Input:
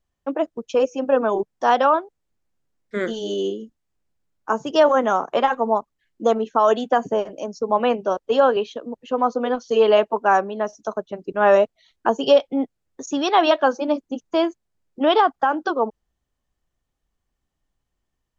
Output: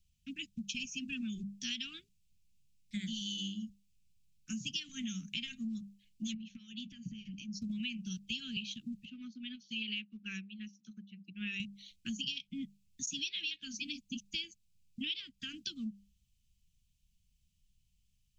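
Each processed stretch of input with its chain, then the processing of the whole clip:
6.34–7.62 s: compression 4:1, threshold -33 dBFS + distance through air 140 m
9.05–11.60 s: band-pass 260–3000 Hz + upward expansion, over -33 dBFS
whole clip: Chebyshev band-stop 200–2500 Hz, order 4; hum notches 50/100/150/200 Hz; compression 8:1, threshold -41 dBFS; trim +5 dB

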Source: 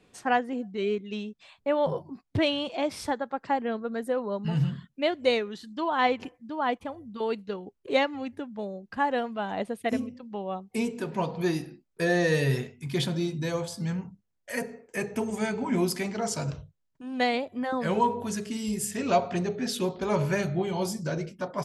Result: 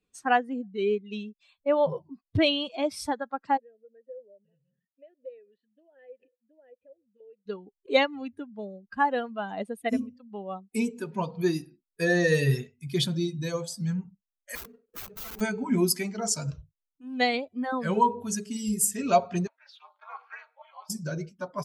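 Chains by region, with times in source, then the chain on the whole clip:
3.57–7.46 s: tilt EQ -2.5 dB/octave + compression, threshold -32 dBFS + vowel filter e
14.55–15.41 s: median filter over 41 samples + integer overflow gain 33 dB
19.47–20.90 s: Chebyshev high-pass 730 Hz, order 5 + ring modulator 140 Hz + distance through air 320 m
whole clip: expander on every frequency bin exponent 1.5; treble shelf 6.5 kHz +9 dB; trim +3.5 dB

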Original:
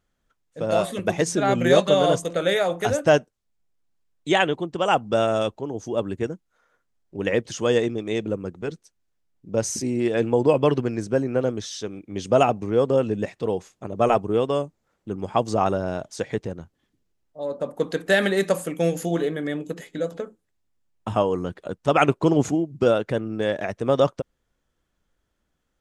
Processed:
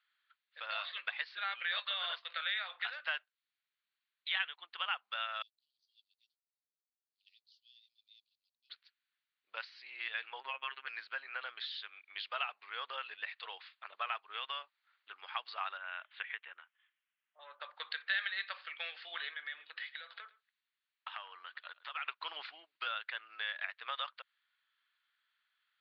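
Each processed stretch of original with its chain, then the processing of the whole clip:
5.42–8.70 s: companding laws mixed up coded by A + inverse Chebyshev high-pass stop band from 1.8 kHz, stop band 70 dB + tilt EQ +3 dB/octave
10.40–10.87 s: low-pass 3.2 kHz 24 dB/octave + robot voice 134 Hz
15.77–17.60 s: steep low-pass 3.2 kHz 48 dB/octave + dynamic bell 620 Hz, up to -5 dB, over -37 dBFS, Q 0.99
19.33–22.08 s: compression, threshold -29 dBFS + delay 110 ms -20 dB
whole clip: high-pass 1.4 kHz 24 dB/octave; compression 2.5:1, threshold -42 dBFS; steep low-pass 4.5 kHz 96 dB/octave; trim +3.5 dB

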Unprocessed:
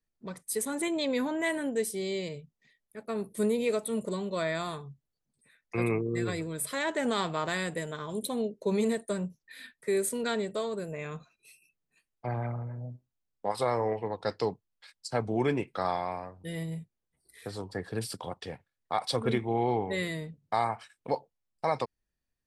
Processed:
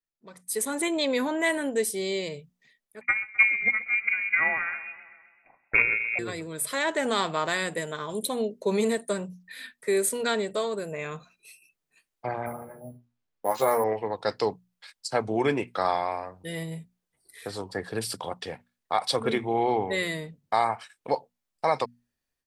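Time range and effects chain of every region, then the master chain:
3.01–6.19 s: transient shaper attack +12 dB, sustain -4 dB + frequency inversion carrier 2.6 kHz + modulated delay 130 ms, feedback 64%, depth 59 cents, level -18 dB
12.46–13.84 s: low-pass 2.7 kHz 6 dB/octave + doubling 13 ms -4 dB + careless resampling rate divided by 4×, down none, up hold
whole clip: bass shelf 250 Hz -8.5 dB; hum notches 60/120/180/240 Hz; level rider gain up to 13 dB; trim -7 dB

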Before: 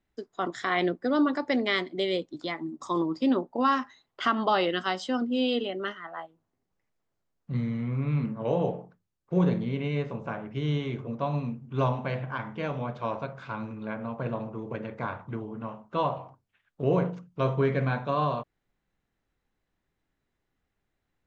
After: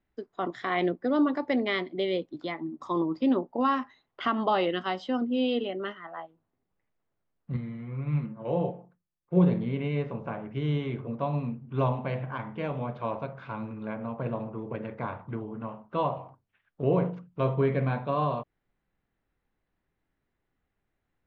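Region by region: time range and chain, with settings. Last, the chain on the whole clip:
7.56–9.50 s: comb 5.7 ms, depth 43% + upward expansion, over -33 dBFS
whole clip: low-pass 3 kHz 12 dB/octave; dynamic bell 1.5 kHz, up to -5 dB, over -46 dBFS, Q 2.3

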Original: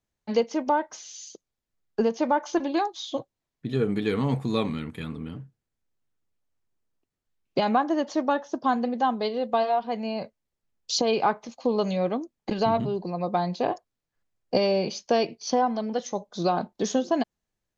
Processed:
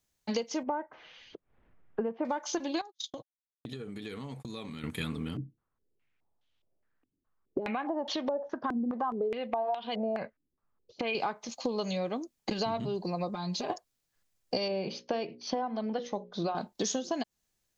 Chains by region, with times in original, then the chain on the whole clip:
0.63–2.25 s: Bessel low-pass 1.4 kHz, order 6 + upward compressor, threshold -45 dBFS
2.81–4.84 s: gate -35 dBFS, range -51 dB + compression 16:1, threshold -37 dBFS
5.37–11.15 s: compression 3:1, threshold -28 dBFS + step-sequenced low-pass 4.8 Hz 300–3300 Hz
13.29–13.70 s: compression 3:1, threshold -37 dBFS + comb 4.9 ms, depth 94%
14.68–16.55 s: distance through air 320 m + hum notches 60/120/180/240/300/360/420/480/540 Hz
whole clip: treble shelf 2.9 kHz +11.5 dB; compression 6:1, threshold -29 dBFS

